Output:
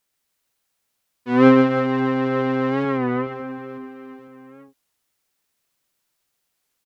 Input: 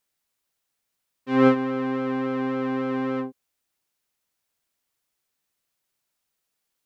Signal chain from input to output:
0:02.85–0:03.27: Chebyshev band-pass filter 110–2,300 Hz, order 2
reverse bouncing-ball delay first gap 130 ms, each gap 1.4×, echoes 5
wow of a warped record 33 1/3 rpm, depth 100 cents
level +3 dB

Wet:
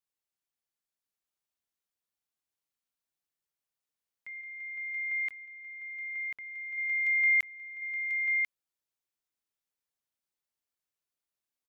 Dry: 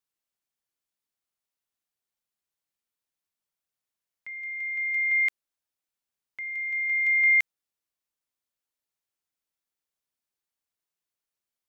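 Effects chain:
0:04.41–0:06.78: high-shelf EQ 2,700 Hz −11 dB
single-tap delay 1,042 ms −4 dB
level −4.5 dB

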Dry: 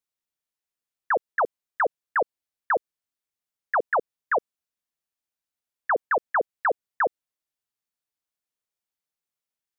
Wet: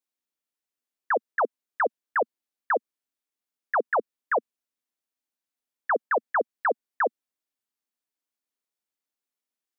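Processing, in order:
low shelf with overshoot 190 Hz −7 dB, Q 3
level −1.5 dB

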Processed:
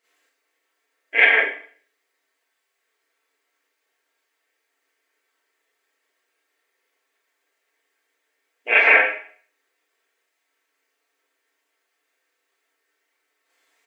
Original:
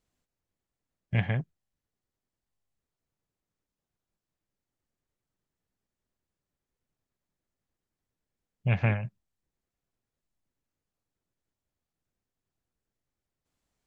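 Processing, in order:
linear-phase brick-wall high-pass 280 Hz
parametric band 2,000 Hz +13 dB 0.97 octaves
comb filter 4.4 ms
four-comb reverb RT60 0.49 s, combs from 29 ms, DRR −9.5 dB
level +2 dB

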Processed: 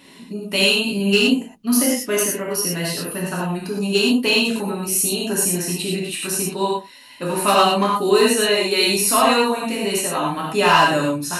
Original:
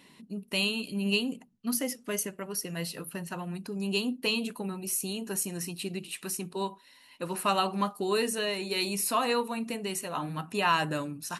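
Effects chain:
gain into a clipping stage and back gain 19 dB
reverb whose tail is shaped and stops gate 140 ms flat, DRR −4.5 dB
level +7 dB

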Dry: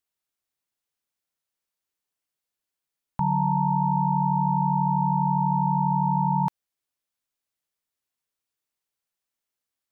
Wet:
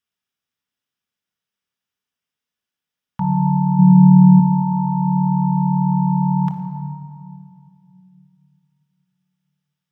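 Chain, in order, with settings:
0:03.78–0:04.40: parametric band 190 Hz +10.5 dB 0.76 octaves
convolution reverb RT60 2.3 s, pre-delay 3 ms, DRR 4 dB
level −4.5 dB

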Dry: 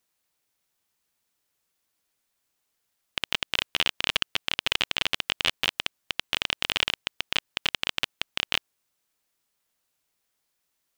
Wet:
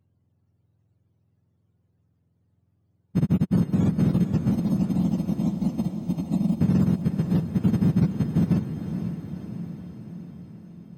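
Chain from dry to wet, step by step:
frequency axis turned over on the octave scale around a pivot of 740 Hz
brickwall limiter −19 dBFS, peak gain reduction 10.5 dB
0:04.51–0:06.61: phaser with its sweep stopped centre 420 Hz, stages 6
feedback delay with all-pass diffusion 491 ms, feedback 64%, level −8 dB
level +6.5 dB

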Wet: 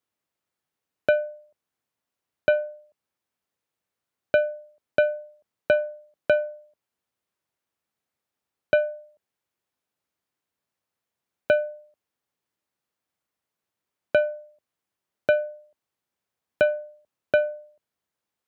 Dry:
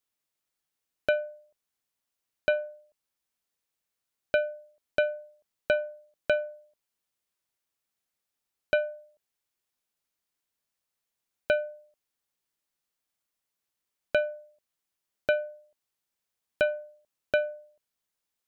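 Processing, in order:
high-pass filter 66 Hz 24 dB per octave
high-shelf EQ 2,500 Hz −10.5 dB
level +6 dB

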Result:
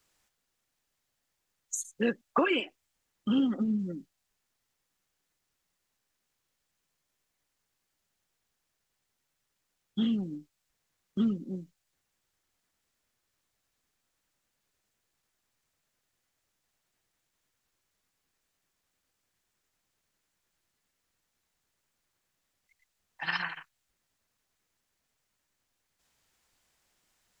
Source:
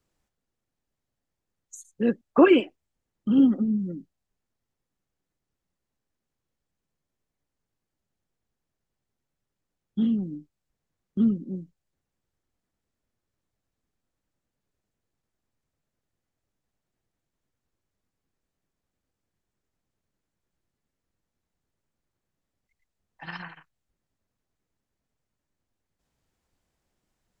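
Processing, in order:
tilt shelving filter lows −7.5 dB, about 740 Hz
downward compressor 16 to 1, threshold −25 dBFS, peak gain reduction 13 dB
level +2.5 dB

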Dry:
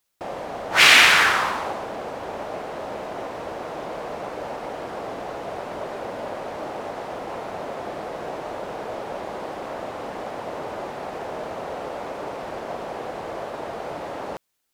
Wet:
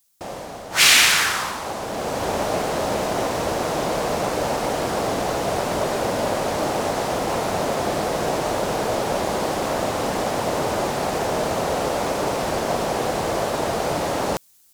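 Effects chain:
bass and treble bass +6 dB, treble +13 dB
automatic gain control gain up to 9 dB
level −1 dB

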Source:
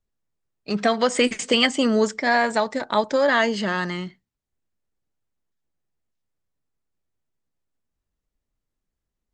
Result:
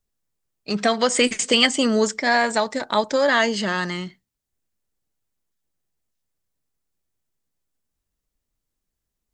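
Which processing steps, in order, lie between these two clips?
high-shelf EQ 4,500 Hz +9 dB

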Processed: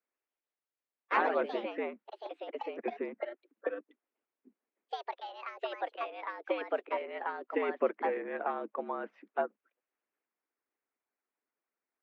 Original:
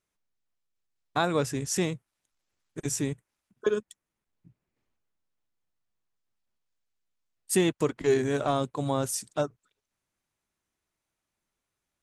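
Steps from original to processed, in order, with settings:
single-sideband voice off tune +85 Hz 160–2,300 Hz
delay with pitch and tempo change per echo 144 ms, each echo +3 semitones, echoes 3
harmonic and percussive parts rebalanced harmonic −11 dB
level −1.5 dB

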